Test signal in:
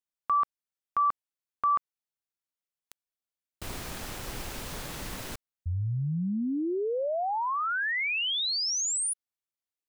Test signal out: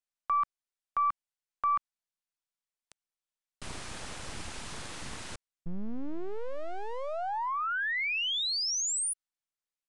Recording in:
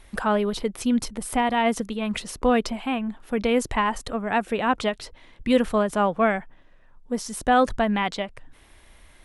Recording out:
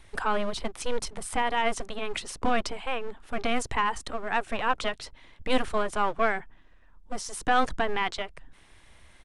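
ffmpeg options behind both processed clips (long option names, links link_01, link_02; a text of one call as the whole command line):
ffmpeg -i in.wav -filter_complex "[0:a]aeval=exprs='0.473*(cos(1*acos(clip(val(0)/0.473,-1,1)))-cos(1*PI/2))+0.0299*(cos(3*acos(clip(val(0)/0.473,-1,1)))-cos(3*PI/2))+0.0211*(cos(4*acos(clip(val(0)/0.473,-1,1)))-cos(4*PI/2))':channel_layout=same,acrossover=split=540|2400[link_01][link_02][link_03];[link_01]aeval=exprs='abs(val(0))':channel_layout=same[link_04];[link_04][link_02][link_03]amix=inputs=3:normalize=0,aresample=22050,aresample=44100" out.wav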